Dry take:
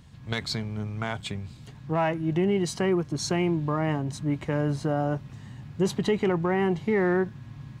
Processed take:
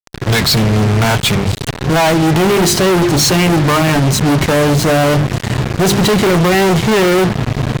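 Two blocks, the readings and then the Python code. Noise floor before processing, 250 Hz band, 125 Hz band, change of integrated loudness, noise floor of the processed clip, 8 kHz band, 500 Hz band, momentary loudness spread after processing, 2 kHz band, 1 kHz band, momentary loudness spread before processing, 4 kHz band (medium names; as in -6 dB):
-46 dBFS, +14.0 dB, +16.5 dB, +15.0 dB, -26 dBFS, +22.0 dB, +13.5 dB, 5 LU, +17.5 dB, +16.5 dB, 12 LU, +21.0 dB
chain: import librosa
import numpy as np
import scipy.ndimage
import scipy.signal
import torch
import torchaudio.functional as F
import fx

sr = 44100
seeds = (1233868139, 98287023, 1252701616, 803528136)

y = fx.hum_notches(x, sr, base_hz=50, count=8)
y = fx.fuzz(y, sr, gain_db=47.0, gate_db=-43.0)
y = y * 10.0 ** (3.5 / 20.0)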